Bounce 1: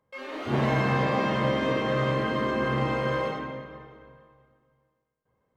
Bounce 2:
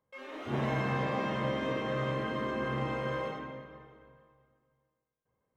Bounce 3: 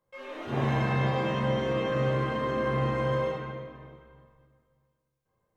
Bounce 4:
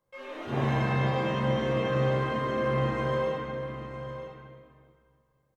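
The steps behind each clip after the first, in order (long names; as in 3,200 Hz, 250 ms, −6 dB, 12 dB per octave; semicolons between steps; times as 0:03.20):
notch filter 4,500 Hz, Q 6.9; level −7 dB
rectangular room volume 100 cubic metres, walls mixed, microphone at 0.86 metres
single-tap delay 959 ms −11 dB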